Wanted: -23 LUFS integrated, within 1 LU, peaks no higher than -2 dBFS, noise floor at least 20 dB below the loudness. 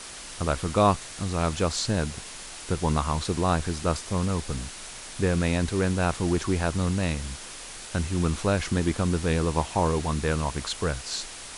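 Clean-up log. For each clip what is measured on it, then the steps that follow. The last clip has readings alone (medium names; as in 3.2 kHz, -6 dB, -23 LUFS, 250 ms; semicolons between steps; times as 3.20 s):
noise floor -41 dBFS; noise floor target -47 dBFS; loudness -27.0 LUFS; peak level -8.5 dBFS; loudness target -23.0 LUFS
-> noise reduction 6 dB, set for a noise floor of -41 dBFS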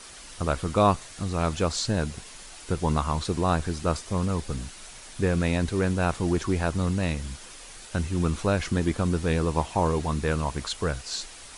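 noise floor -45 dBFS; noise floor target -47 dBFS
-> noise reduction 6 dB, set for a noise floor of -45 dBFS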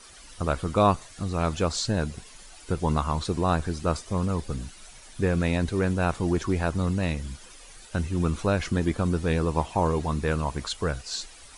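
noise floor -48 dBFS; loudness -27.0 LUFS; peak level -8.5 dBFS; loudness target -23.0 LUFS
-> trim +4 dB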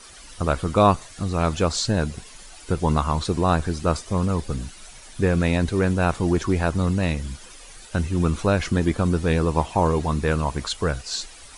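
loudness -23.0 LUFS; peak level -4.5 dBFS; noise floor -44 dBFS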